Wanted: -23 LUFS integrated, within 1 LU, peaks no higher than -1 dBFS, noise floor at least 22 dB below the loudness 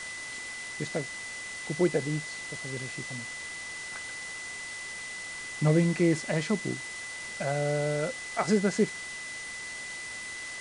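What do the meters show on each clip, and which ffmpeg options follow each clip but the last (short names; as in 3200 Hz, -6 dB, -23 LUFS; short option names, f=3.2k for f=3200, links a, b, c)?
steady tone 2000 Hz; tone level -38 dBFS; noise floor -40 dBFS; noise floor target -54 dBFS; loudness -31.5 LUFS; peak -12.5 dBFS; loudness target -23.0 LUFS
-> -af "bandreject=f=2k:w=30"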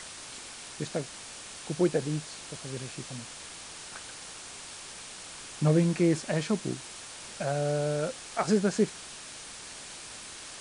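steady tone none; noise floor -45 dBFS; noise floor target -55 dBFS
-> -af "afftdn=nr=10:nf=-45"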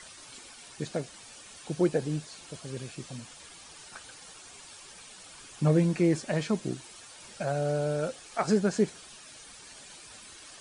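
noise floor -50 dBFS; noise floor target -52 dBFS
-> -af "afftdn=nr=6:nf=-50"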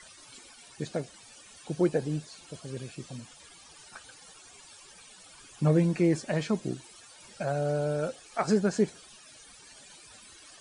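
noise floor -53 dBFS; loudness -30.0 LUFS; peak -12.5 dBFS; loudness target -23.0 LUFS
-> -af "volume=7dB"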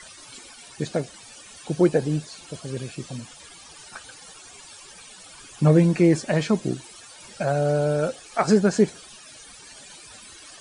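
loudness -23.0 LUFS; peak -5.5 dBFS; noise floor -46 dBFS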